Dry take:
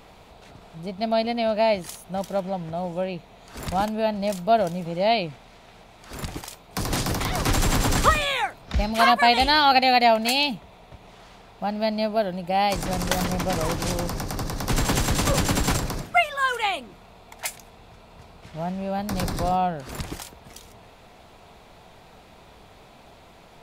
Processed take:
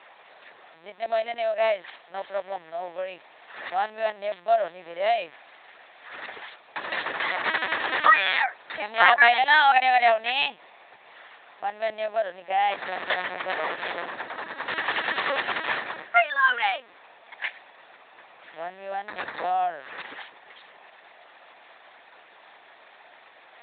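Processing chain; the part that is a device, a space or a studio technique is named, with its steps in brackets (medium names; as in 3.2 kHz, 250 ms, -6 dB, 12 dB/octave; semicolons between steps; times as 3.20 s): talking toy (LPC vocoder at 8 kHz pitch kept; high-pass 640 Hz 12 dB/octave; peaking EQ 1.8 kHz +10.5 dB 0.39 oct)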